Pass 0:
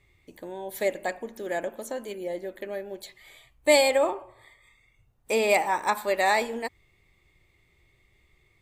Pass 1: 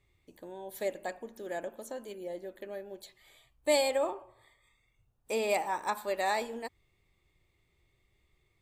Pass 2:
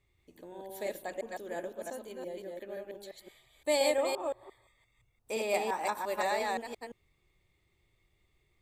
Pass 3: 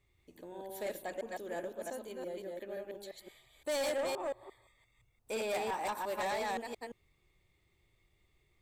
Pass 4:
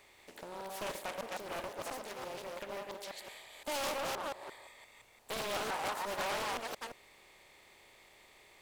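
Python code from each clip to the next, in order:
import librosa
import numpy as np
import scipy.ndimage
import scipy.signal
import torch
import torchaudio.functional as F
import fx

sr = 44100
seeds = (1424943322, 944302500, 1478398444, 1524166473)

y1 = fx.peak_eq(x, sr, hz=2100.0, db=-5.0, octaves=0.41)
y1 = y1 * librosa.db_to_amplitude(-7.0)
y2 = fx.reverse_delay(y1, sr, ms=173, wet_db=-1.5)
y2 = y2 * librosa.db_to_amplitude(-2.5)
y3 = 10.0 ** (-30.5 / 20.0) * np.tanh(y2 / 10.0 ** (-30.5 / 20.0))
y4 = fx.bin_compress(y3, sr, power=0.6)
y4 = fx.low_shelf(y4, sr, hz=500.0, db=-12.0)
y4 = fx.doppler_dist(y4, sr, depth_ms=0.7)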